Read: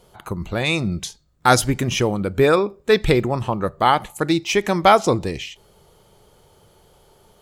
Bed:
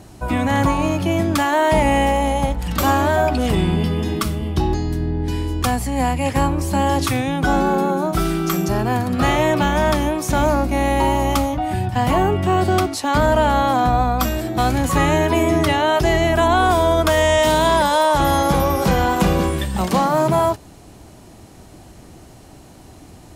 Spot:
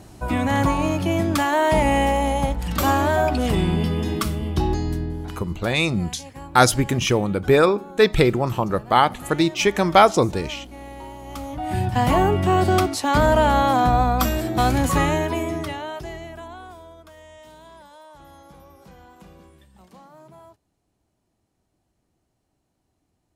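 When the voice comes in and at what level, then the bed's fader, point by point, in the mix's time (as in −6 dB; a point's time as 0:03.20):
5.10 s, 0.0 dB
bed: 0:04.93 −2.5 dB
0:05.72 −20.5 dB
0:11.22 −20.5 dB
0:11.78 −1 dB
0:14.87 −1 dB
0:17.05 −30.5 dB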